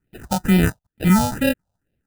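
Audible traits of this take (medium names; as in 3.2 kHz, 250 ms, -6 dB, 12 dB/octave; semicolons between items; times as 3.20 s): aliases and images of a low sample rate 1.1 kHz, jitter 0%; phasing stages 4, 2.2 Hz, lowest notch 330–1100 Hz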